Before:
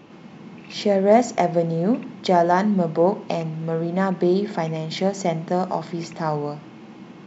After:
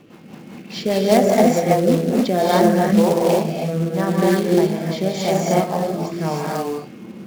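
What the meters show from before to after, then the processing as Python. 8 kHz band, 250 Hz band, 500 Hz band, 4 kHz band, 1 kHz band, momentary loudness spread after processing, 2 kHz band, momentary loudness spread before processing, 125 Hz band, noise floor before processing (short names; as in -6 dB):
n/a, +5.0 dB, +3.5 dB, +5.0 dB, +1.5 dB, 10 LU, +3.5 dB, 11 LU, +4.0 dB, -44 dBFS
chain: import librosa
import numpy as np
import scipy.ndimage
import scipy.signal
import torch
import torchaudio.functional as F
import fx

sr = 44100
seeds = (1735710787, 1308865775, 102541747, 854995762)

y = fx.rev_gated(x, sr, seeds[0], gate_ms=340, shape='rising', drr_db=-3.0)
y = fx.quant_float(y, sr, bits=2)
y = fx.rotary_switch(y, sr, hz=5.0, then_hz=0.9, switch_at_s=1.9)
y = y * librosa.db_to_amplitude(1.5)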